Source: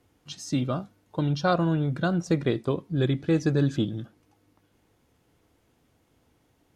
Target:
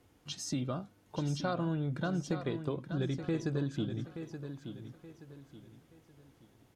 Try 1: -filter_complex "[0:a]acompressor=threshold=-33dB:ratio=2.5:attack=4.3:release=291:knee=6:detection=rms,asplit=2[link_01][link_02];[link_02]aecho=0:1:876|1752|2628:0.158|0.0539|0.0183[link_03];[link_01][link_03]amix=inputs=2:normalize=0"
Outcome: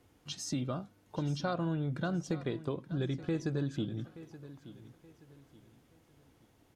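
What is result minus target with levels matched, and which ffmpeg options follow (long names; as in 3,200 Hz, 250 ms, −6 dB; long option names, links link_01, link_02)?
echo-to-direct −6.5 dB
-filter_complex "[0:a]acompressor=threshold=-33dB:ratio=2.5:attack=4.3:release=291:knee=6:detection=rms,asplit=2[link_01][link_02];[link_02]aecho=0:1:876|1752|2628|3504:0.335|0.114|0.0387|0.0132[link_03];[link_01][link_03]amix=inputs=2:normalize=0"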